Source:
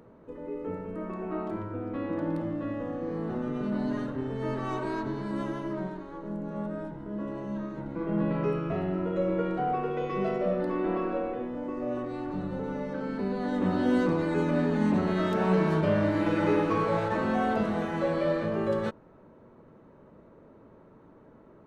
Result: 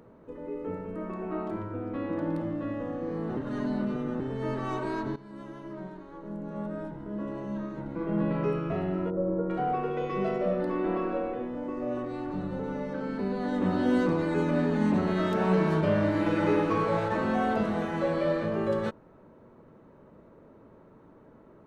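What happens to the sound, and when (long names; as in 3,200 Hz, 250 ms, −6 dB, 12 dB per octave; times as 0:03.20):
0:03.37–0:04.20: reverse
0:05.16–0:06.86: fade in, from −15.5 dB
0:09.10–0:09.50: Gaussian smoothing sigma 7.6 samples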